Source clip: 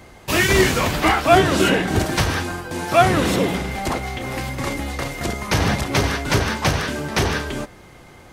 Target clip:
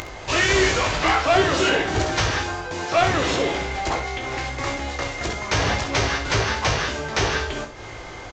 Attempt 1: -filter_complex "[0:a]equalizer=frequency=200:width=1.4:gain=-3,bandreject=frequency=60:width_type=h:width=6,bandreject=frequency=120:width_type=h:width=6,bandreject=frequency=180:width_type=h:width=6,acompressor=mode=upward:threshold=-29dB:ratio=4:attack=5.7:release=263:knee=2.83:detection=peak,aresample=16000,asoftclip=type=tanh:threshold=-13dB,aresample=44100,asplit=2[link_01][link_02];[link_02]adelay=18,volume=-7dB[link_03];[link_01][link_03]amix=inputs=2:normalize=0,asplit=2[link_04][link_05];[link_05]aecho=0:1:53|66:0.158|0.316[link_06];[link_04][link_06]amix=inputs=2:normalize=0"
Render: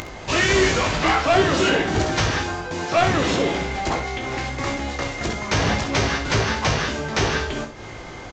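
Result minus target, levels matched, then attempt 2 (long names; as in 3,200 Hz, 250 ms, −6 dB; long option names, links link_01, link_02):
250 Hz band +3.0 dB
-filter_complex "[0:a]equalizer=frequency=200:width=1.4:gain=-11,bandreject=frequency=60:width_type=h:width=6,bandreject=frequency=120:width_type=h:width=6,bandreject=frequency=180:width_type=h:width=6,acompressor=mode=upward:threshold=-29dB:ratio=4:attack=5.7:release=263:knee=2.83:detection=peak,aresample=16000,asoftclip=type=tanh:threshold=-13dB,aresample=44100,asplit=2[link_01][link_02];[link_02]adelay=18,volume=-7dB[link_03];[link_01][link_03]amix=inputs=2:normalize=0,asplit=2[link_04][link_05];[link_05]aecho=0:1:53|66:0.158|0.316[link_06];[link_04][link_06]amix=inputs=2:normalize=0"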